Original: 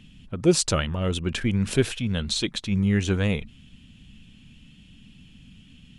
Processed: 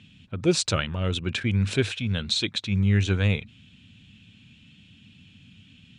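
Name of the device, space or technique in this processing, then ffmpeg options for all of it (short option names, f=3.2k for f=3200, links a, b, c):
car door speaker: -af "highpass=94,equalizer=f=100:t=q:w=4:g=10,equalizer=f=1.5k:t=q:w=4:g=4,equalizer=f=2.4k:t=q:w=4:g=6,equalizer=f=3.8k:t=q:w=4:g=7,lowpass=f=8.6k:w=0.5412,lowpass=f=8.6k:w=1.3066,volume=-3dB"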